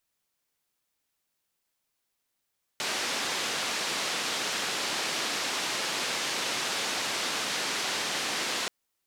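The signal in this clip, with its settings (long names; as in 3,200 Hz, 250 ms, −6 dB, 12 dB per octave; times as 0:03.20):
band-limited noise 210–5,200 Hz, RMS −31 dBFS 5.88 s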